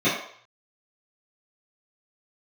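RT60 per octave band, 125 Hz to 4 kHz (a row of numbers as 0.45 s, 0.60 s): 0.60 s, 0.40 s, 0.55 s, 0.60 s, 0.60 s, 0.55 s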